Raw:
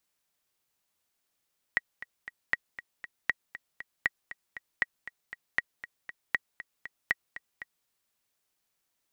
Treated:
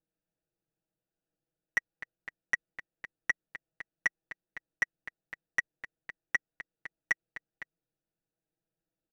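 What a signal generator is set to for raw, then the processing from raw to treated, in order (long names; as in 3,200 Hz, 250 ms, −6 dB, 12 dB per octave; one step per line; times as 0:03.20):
click track 236 BPM, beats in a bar 3, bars 8, 1,910 Hz, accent 15 dB −11.5 dBFS
adaptive Wiener filter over 41 samples
soft clipping −17.5 dBFS
comb filter 6.2 ms, depth 93%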